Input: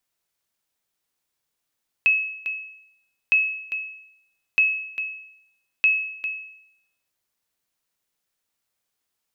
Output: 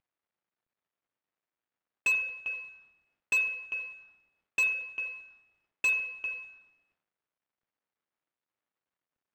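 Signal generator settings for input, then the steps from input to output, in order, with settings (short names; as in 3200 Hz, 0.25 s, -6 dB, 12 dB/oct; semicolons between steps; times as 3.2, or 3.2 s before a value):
sonar ping 2580 Hz, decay 0.77 s, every 1.26 s, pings 4, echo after 0.40 s, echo -11 dB -11.5 dBFS
CVSD 64 kbps; LPF 2000 Hz 12 dB/oct; hard clip -22.5 dBFS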